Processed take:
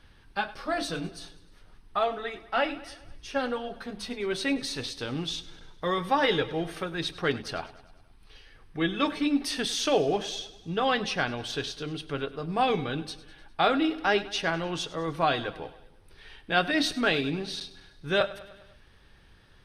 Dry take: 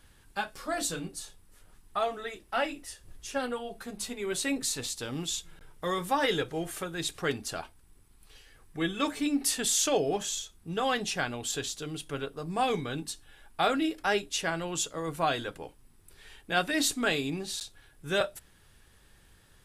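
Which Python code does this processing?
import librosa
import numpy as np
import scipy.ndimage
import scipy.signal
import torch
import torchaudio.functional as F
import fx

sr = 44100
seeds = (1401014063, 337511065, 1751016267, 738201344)

p1 = scipy.signal.savgol_filter(x, 15, 4, mode='constant')
p2 = p1 + fx.echo_feedback(p1, sr, ms=101, feedback_pct=59, wet_db=-17.5, dry=0)
y = p2 * 10.0 ** (3.0 / 20.0)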